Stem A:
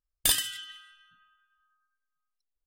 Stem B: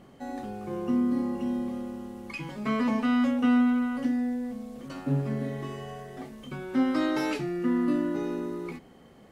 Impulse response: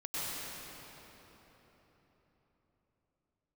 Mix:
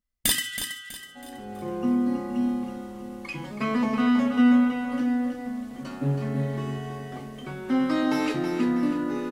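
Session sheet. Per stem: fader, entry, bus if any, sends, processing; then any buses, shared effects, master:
+0.5 dB, 0.00 s, no send, echo send -9.5 dB, small resonant body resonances 220/2000 Hz, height 16 dB
-8.5 dB, 0.95 s, no send, echo send -6.5 dB, de-hum 53.56 Hz, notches 12; AGC gain up to 10.5 dB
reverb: off
echo: feedback echo 0.324 s, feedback 37%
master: dry

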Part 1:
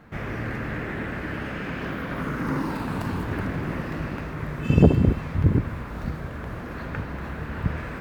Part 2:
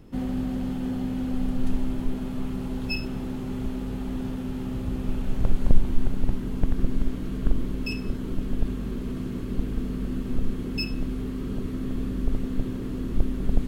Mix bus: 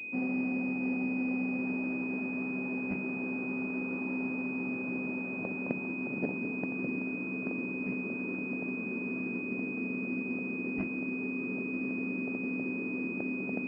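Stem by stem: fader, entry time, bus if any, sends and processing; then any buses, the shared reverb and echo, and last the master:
-17.5 dB, 1.40 s, no send, dry
-2.0 dB, 0.00 s, no send, dry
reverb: off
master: HPF 210 Hz 24 dB/oct; pulse-width modulation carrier 2500 Hz

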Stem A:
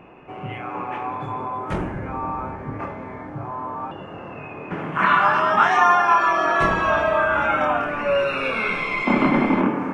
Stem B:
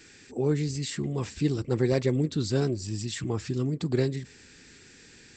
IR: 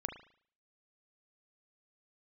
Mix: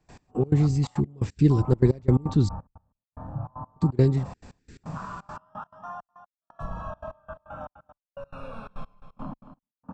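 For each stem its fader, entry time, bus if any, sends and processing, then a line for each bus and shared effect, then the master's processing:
-5.5 dB, 0.00 s, no send, echo send -11.5 dB, compressor 8:1, threshold -28 dBFS, peak gain reduction 16 dB; step gate "xxxx.x...x" 90 bpm -60 dB; fixed phaser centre 880 Hz, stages 4
-0.5 dB, 0.00 s, muted 2.49–3.76, no send, no echo send, dry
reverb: off
echo: echo 0.253 s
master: tilt -3.5 dB/oct; step gate ".x..x.xxxx" 173 bpm -24 dB; high shelf 6100 Hz +9.5 dB

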